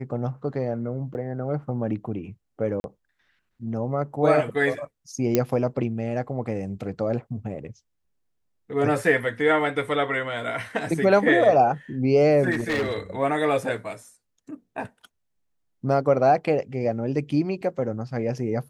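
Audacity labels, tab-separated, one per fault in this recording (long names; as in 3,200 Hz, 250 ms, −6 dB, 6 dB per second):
1.140000	1.150000	drop-out 9.5 ms
2.800000	2.840000	drop-out 41 ms
5.350000	5.350000	click −6 dBFS
12.510000	12.990000	clipping −21 dBFS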